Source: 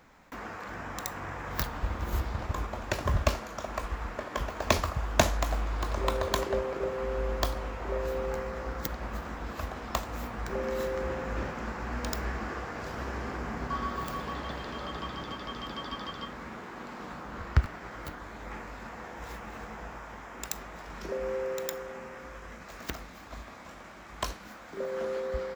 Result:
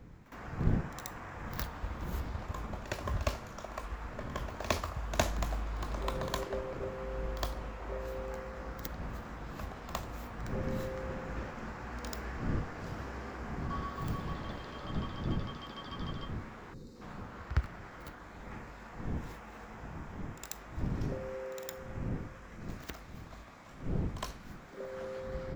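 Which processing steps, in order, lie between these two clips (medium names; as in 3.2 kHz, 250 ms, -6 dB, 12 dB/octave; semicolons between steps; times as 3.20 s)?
wind noise 170 Hz -35 dBFS; time-frequency box 16.74–17.01 s, 540–3600 Hz -19 dB; on a send: reverse echo 60 ms -13 dB; on the sum: trim -7 dB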